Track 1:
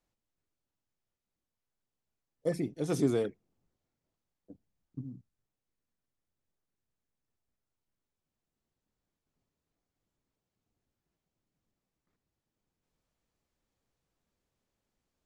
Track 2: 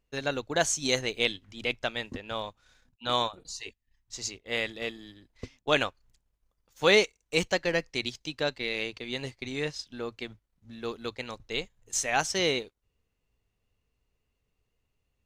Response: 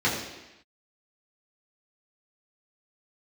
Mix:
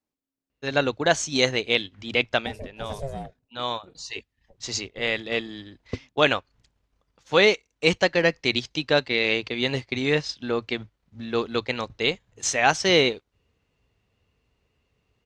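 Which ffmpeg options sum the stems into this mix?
-filter_complex "[0:a]aeval=exprs='val(0)*sin(2*PI*270*n/s)':channel_layout=same,volume=-2dB,asplit=2[link_01][link_02];[1:a]highpass=59,dynaudnorm=framelen=110:gausssize=3:maxgain=12dB,lowpass=5000,adelay=500,volume=-2dB[link_03];[link_02]apad=whole_len=694978[link_04];[link_03][link_04]sidechaincompress=threshold=-42dB:ratio=8:attack=16:release=1120[link_05];[link_01][link_05]amix=inputs=2:normalize=0"

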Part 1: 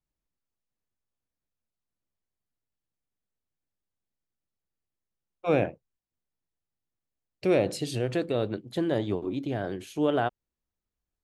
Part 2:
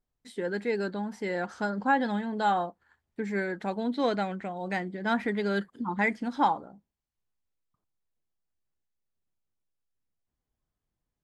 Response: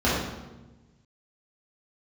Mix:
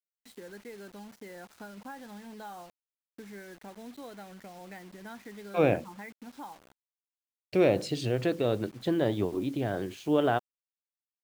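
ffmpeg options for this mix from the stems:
-filter_complex "[0:a]lowpass=6600,adelay=100,volume=0dB[link_01];[1:a]acompressor=threshold=-39dB:ratio=3,volume=-6.5dB[link_02];[link_01][link_02]amix=inputs=2:normalize=0,acrusher=bits=8:mix=0:aa=0.000001"

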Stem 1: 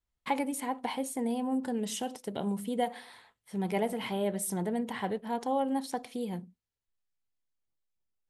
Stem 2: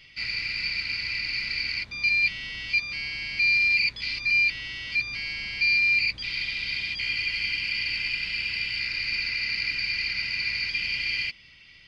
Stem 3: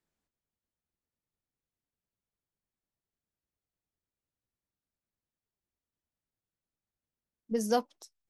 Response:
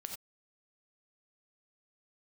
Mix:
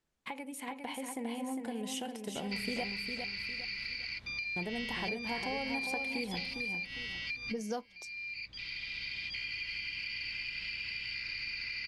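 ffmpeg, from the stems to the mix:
-filter_complex "[0:a]equalizer=frequency=2500:width_type=o:width=0.77:gain=7.5,acompressor=threshold=-33dB:ratio=6,volume=-6dB,asplit=3[link_01][link_02][link_03];[link_01]atrim=end=2.84,asetpts=PTS-STARTPTS,afade=type=out:start_time=2.836:duration=0.004:curve=hsin[link_04];[link_02]atrim=start=2.84:end=4.56,asetpts=PTS-STARTPTS,volume=0[link_05];[link_03]atrim=start=4.56,asetpts=PTS-STARTPTS,afade=type=in:duration=0.004:curve=hsin[link_06];[link_04][link_05][link_06]concat=n=3:v=0:a=1,asplit=2[link_07][link_08];[link_08]volume=-6dB[link_09];[1:a]acompressor=threshold=-27dB:ratio=4,adelay=2350,volume=-5dB[link_10];[2:a]volume=2.5dB,asplit=2[link_11][link_12];[link_12]apad=whole_len=627351[link_13];[link_10][link_13]sidechaincompress=threshold=-37dB:ratio=8:attack=22:release=1350[link_14];[link_14][link_11]amix=inputs=2:normalize=0,lowpass=8800,acompressor=threshold=-41dB:ratio=4,volume=0dB[link_15];[link_09]aecho=0:1:405|810|1215|1620|2025:1|0.34|0.116|0.0393|0.0134[link_16];[link_07][link_15][link_16]amix=inputs=3:normalize=0,dynaudnorm=framelen=210:gausssize=9:maxgain=3.5dB"

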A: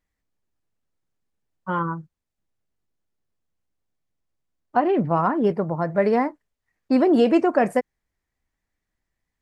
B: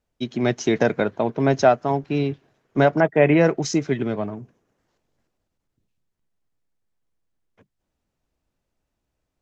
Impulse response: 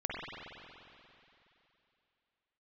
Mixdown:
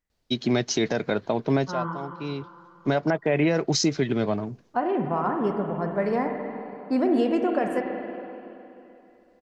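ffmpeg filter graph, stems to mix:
-filter_complex "[0:a]volume=-9.5dB,asplit=3[link_01][link_02][link_03];[link_02]volume=-4dB[link_04];[1:a]equalizer=frequency=4400:width=1.9:gain=10,adelay=100,volume=2dB[link_05];[link_03]apad=whole_len=419486[link_06];[link_05][link_06]sidechaincompress=threshold=-45dB:ratio=10:attack=6:release=1220[link_07];[2:a]atrim=start_sample=2205[link_08];[link_04][link_08]afir=irnorm=-1:irlink=0[link_09];[link_01][link_07][link_09]amix=inputs=3:normalize=0,alimiter=limit=-13dB:level=0:latency=1:release=187"

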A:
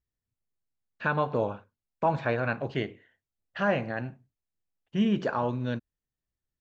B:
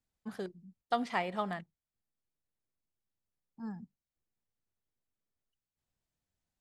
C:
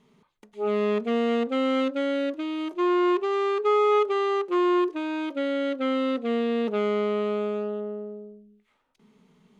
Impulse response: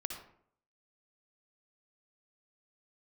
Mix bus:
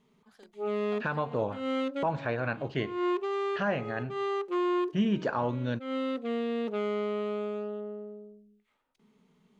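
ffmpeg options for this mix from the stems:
-filter_complex "[0:a]volume=-0.5dB,asplit=2[link_01][link_02];[1:a]lowpass=5300,aemphasis=mode=production:type=riaa,acrossover=split=470[link_03][link_04];[link_04]acompressor=threshold=-44dB:ratio=2[link_05];[link_03][link_05]amix=inputs=2:normalize=0,volume=-13dB[link_06];[2:a]volume=-6dB[link_07];[link_02]apad=whole_len=423147[link_08];[link_07][link_08]sidechaincompress=threshold=-42dB:ratio=10:attack=8.1:release=172[link_09];[link_01][link_06][link_09]amix=inputs=3:normalize=0,alimiter=limit=-18dB:level=0:latency=1:release=389"

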